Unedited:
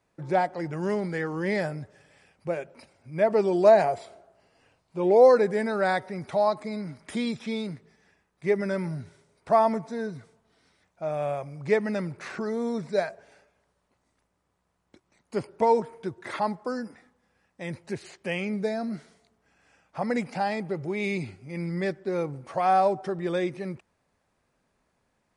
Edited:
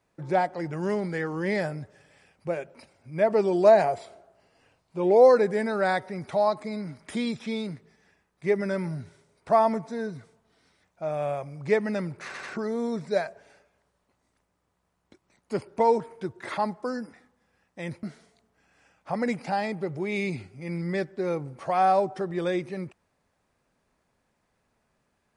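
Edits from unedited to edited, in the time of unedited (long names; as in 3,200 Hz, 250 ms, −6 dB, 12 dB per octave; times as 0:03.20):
0:12.25: stutter 0.09 s, 3 plays
0:17.85–0:18.91: remove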